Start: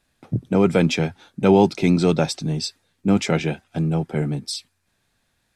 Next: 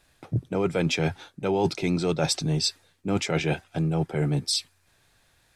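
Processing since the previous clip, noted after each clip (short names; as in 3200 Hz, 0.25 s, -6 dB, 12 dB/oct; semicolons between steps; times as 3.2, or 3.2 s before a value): bell 220 Hz -9 dB 0.55 oct; reverse; compressor 6:1, threshold -28 dBFS, peak gain reduction 15 dB; reverse; gain +6 dB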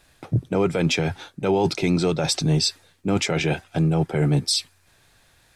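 limiter -17 dBFS, peak gain reduction 7 dB; gain +5.5 dB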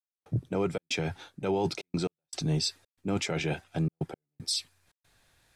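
step gate "..xxxx.xxxxxxx.x" 116 bpm -60 dB; gain -8 dB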